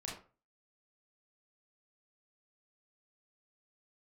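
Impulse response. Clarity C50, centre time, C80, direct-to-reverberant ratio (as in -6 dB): 5.0 dB, 37 ms, 10.5 dB, -4.0 dB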